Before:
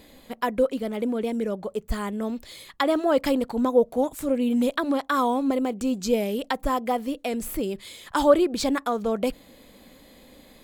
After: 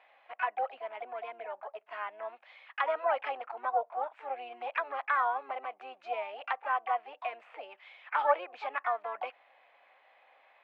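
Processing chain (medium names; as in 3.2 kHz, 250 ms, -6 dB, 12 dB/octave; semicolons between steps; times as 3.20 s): harmony voices +7 st -8 dB; Chebyshev band-pass 680–2600 Hz, order 3; trim -4 dB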